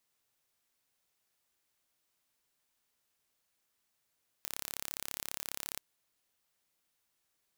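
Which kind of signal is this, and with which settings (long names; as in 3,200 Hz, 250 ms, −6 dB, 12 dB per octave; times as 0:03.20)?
impulse train 34.7 per second, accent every 0, −11 dBFS 1.33 s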